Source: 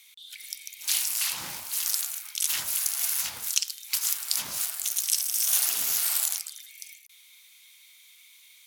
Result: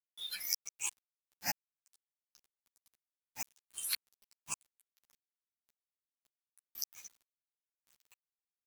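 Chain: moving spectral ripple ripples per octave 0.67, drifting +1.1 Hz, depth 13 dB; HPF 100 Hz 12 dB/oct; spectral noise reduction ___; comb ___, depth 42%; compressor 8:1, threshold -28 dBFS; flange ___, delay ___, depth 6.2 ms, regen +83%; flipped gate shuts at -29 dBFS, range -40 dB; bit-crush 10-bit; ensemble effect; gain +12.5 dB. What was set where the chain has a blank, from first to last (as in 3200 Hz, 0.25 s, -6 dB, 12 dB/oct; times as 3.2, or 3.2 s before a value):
28 dB, 1.2 ms, 0.47 Hz, 2.9 ms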